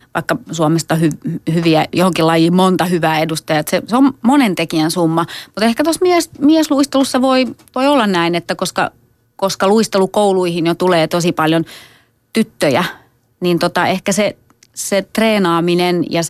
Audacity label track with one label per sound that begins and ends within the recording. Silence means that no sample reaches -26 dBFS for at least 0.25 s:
9.390000	11.780000	sound
12.350000	12.920000	sound
13.420000	14.310000	sound